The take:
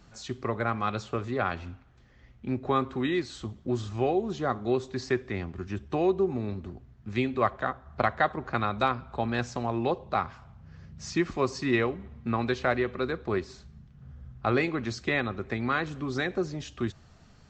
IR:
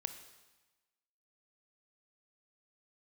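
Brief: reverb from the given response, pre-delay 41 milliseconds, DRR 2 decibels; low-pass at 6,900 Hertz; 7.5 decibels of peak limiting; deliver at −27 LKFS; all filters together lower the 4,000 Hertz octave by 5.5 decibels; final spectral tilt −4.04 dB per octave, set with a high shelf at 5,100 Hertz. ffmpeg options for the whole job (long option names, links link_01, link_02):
-filter_complex "[0:a]lowpass=6900,equalizer=frequency=4000:width_type=o:gain=-3,highshelf=frequency=5100:gain=-7.5,alimiter=limit=-19dB:level=0:latency=1,asplit=2[link_01][link_02];[1:a]atrim=start_sample=2205,adelay=41[link_03];[link_02][link_03]afir=irnorm=-1:irlink=0,volume=-1dB[link_04];[link_01][link_04]amix=inputs=2:normalize=0,volume=3.5dB"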